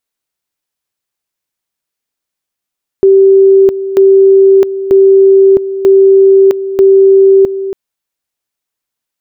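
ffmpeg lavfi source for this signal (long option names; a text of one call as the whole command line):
ffmpeg -f lavfi -i "aevalsrc='pow(10,(-1.5-12.5*gte(mod(t,0.94),0.66))/20)*sin(2*PI*388*t)':duration=4.7:sample_rate=44100" out.wav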